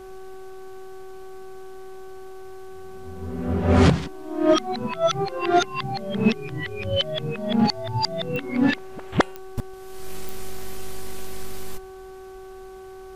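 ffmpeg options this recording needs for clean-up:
ffmpeg -i in.wav -af "adeclick=threshold=4,bandreject=frequency=378.6:width_type=h:width=4,bandreject=frequency=757.2:width_type=h:width=4,bandreject=frequency=1135.8:width_type=h:width=4,bandreject=frequency=1514.4:width_type=h:width=4,agate=range=-21dB:threshold=-32dB" out.wav

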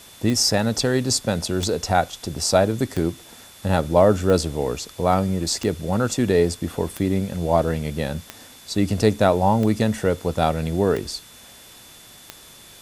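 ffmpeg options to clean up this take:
ffmpeg -i in.wav -af "adeclick=threshold=4,bandreject=frequency=3500:width=30,afftdn=noise_reduction=20:noise_floor=-46" out.wav

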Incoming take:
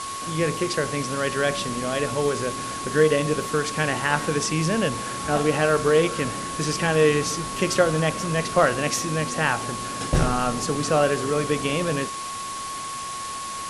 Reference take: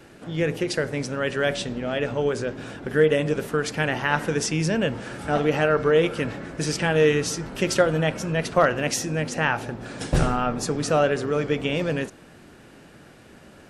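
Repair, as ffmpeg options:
ffmpeg -i in.wav -af "bandreject=frequency=1100:width=30,afwtdn=0.02" out.wav

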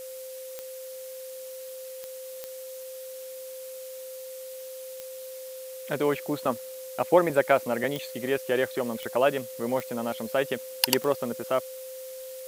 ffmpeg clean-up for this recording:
ffmpeg -i in.wav -af "adeclick=threshold=4,bandreject=frequency=520:width=30,afftdn=noise_reduction=30:noise_floor=-40" out.wav

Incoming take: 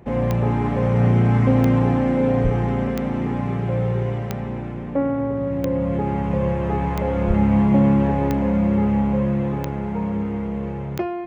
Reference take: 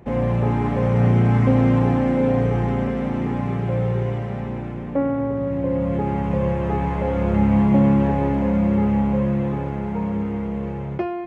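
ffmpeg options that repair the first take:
ffmpeg -i in.wav -filter_complex "[0:a]adeclick=threshold=4,asplit=3[link_01][link_02][link_03];[link_01]afade=type=out:start_time=2.43:duration=0.02[link_04];[link_02]highpass=frequency=140:width=0.5412,highpass=frequency=140:width=1.3066,afade=type=in:start_time=2.43:duration=0.02,afade=type=out:start_time=2.55:duration=0.02[link_05];[link_03]afade=type=in:start_time=2.55:duration=0.02[link_06];[link_04][link_05][link_06]amix=inputs=3:normalize=0,asplit=3[link_07][link_08][link_09];[link_07]afade=type=out:start_time=7.27:duration=0.02[link_10];[link_08]highpass=frequency=140:width=0.5412,highpass=frequency=140:width=1.3066,afade=type=in:start_time=7.27:duration=0.02,afade=type=out:start_time=7.39:duration=0.02[link_11];[link_09]afade=type=in:start_time=7.39:duration=0.02[link_12];[link_10][link_11][link_12]amix=inputs=3:normalize=0" out.wav

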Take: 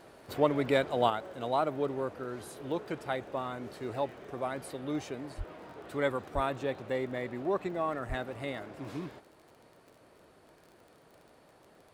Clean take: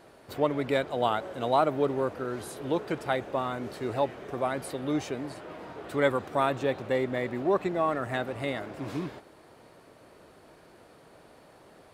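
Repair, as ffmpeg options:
ffmpeg -i in.wav -filter_complex "[0:a]adeclick=threshold=4,asplit=3[link_01][link_02][link_03];[link_01]afade=type=out:start_time=5.37:duration=0.02[link_04];[link_02]highpass=frequency=140:width=0.5412,highpass=frequency=140:width=1.3066,afade=type=in:start_time=5.37:duration=0.02,afade=type=out:start_time=5.49:duration=0.02[link_05];[link_03]afade=type=in:start_time=5.49:duration=0.02[link_06];[link_04][link_05][link_06]amix=inputs=3:normalize=0,asplit=3[link_07][link_08][link_09];[link_07]afade=type=out:start_time=6.34:duration=0.02[link_10];[link_08]highpass=frequency=140:width=0.5412,highpass=frequency=140:width=1.3066,afade=type=in:start_time=6.34:duration=0.02,afade=type=out:start_time=6.46:duration=0.02[link_11];[link_09]afade=type=in:start_time=6.46:duration=0.02[link_12];[link_10][link_11][link_12]amix=inputs=3:normalize=0,asplit=3[link_13][link_14][link_15];[link_13]afade=type=out:start_time=8.08:duration=0.02[link_16];[link_14]highpass=frequency=140:width=0.5412,highpass=frequency=140:width=1.3066,afade=type=in:start_time=8.08:duration=0.02,afade=type=out:start_time=8.2:duration=0.02[link_17];[link_15]afade=type=in:start_time=8.2:duration=0.02[link_18];[link_16][link_17][link_18]amix=inputs=3:normalize=0,asetnsamples=nb_out_samples=441:pad=0,asendcmd='1.1 volume volume 5.5dB',volume=0dB" out.wav

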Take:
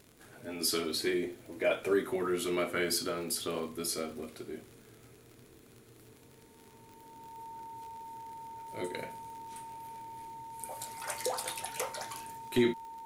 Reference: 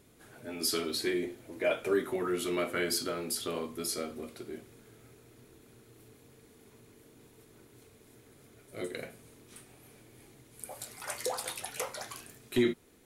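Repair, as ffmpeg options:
ffmpeg -i in.wav -af "adeclick=threshold=4,bandreject=frequency=910:width=30" out.wav

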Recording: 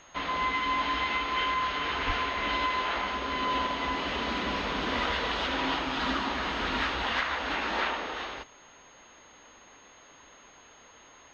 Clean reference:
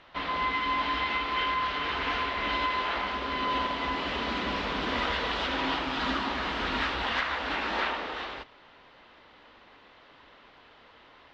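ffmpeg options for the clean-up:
ffmpeg -i in.wav -filter_complex "[0:a]bandreject=frequency=6500:width=30,asplit=3[link_01][link_02][link_03];[link_01]afade=type=out:start_time=2.06:duration=0.02[link_04];[link_02]highpass=frequency=140:width=0.5412,highpass=frequency=140:width=1.3066,afade=type=in:start_time=2.06:duration=0.02,afade=type=out:start_time=2.18:duration=0.02[link_05];[link_03]afade=type=in:start_time=2.18:duration=0.02[link_06];[link_04][link_05][link_06]amix=inputs=3:normalize=0" out.wav

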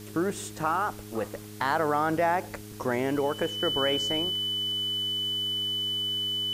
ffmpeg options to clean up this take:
ffmpeg -i in.wav -af "bandreject=frequency=104.8:width_type=h:width=4,bandreject=frequency=209.6:width_type=h:width=4,bandreject=frequency=314.4:width_type=h:width=4,bandreject=frequency=419.2:width_type=h:width=4,bandreject=frequency=3000:width=30,afwtdn=0.0035" out.wav

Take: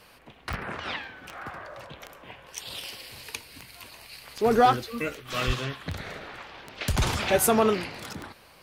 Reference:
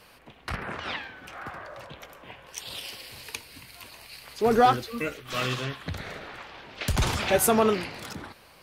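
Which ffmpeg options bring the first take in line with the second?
ffmpeg -i in.wav -filter_complex "[0:a]adeclick=threshold=4,asplit=3[link_01][link_02][link_03];[link_01]afade=type=out:start_time=5.46:duration=0.02[link_04];[link_02]highpass=frequency=140:width=0.5412,highpass=frequency=140:width=1.3066,afade=type=in:start_time=5.46:duration=0.02,afade=type=out:start_time=5.58:duration=0.02[link_05];[link_03]afade=type=in:start_time=5.58:duration=0.02[link_06];[link_04][link_05][link_06]amix=inputs=3:normalize=0" out.wav

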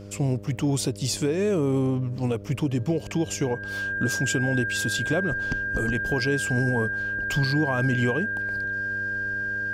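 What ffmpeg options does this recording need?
ffmpeg -i in.wav -af "bandreject=frequency=100.8:width_type=h:width=4,bandreject=frequency=201.6:width_type=h:width=4,bandreject=frequency=302.4:width_type=h:width=4,bandreject=frequency=403.2:width_type=h:width=4,bandreject=frequency=504:width_type=h:width=4,bandreject=frequency=604.8:width_type=h:width=4,bandreject=frequency=1600:width=30" out.wav

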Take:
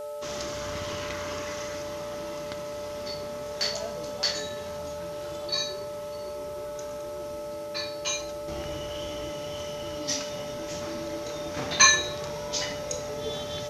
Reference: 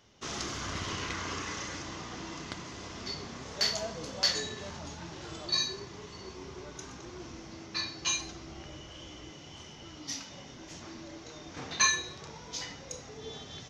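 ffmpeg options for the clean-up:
ffmpeg -i in.wav -af "bandreject=frequency=433.8:width_type=h:width=4,bandreject=frequency=867.6:width_type=h:width=4,bandreject=frequency=1301.4:width_type=h:width=4,bandreject=frequency=590:width=30,afwtdn=0.002,asetnsamples=nb_out_samples=441:pad=0,asendcmd='8.48 volume volume -8dB',volume=0dB" out.wav

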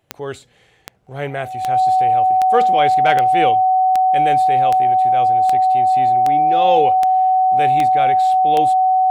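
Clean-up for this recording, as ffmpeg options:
ffmpeg -i in.wav -af "adeclick=threshold=4,bandreject=frequency=750:width=30" out.wav

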